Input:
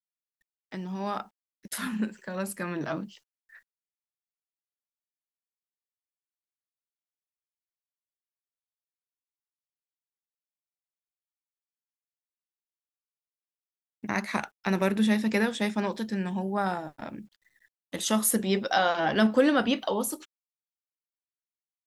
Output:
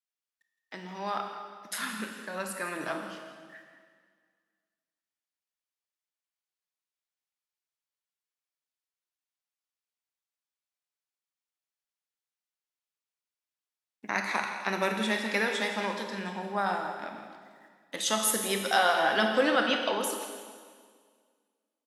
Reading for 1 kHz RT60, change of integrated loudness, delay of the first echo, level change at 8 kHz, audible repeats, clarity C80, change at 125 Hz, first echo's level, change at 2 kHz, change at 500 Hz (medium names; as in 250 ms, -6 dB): 1.8 s, -1.5 dB, 165 ms, 0.0 dB, 1, 5.5 dB, -9.5 dB, -12.5 dB, +2.5 dB, -1.5 dB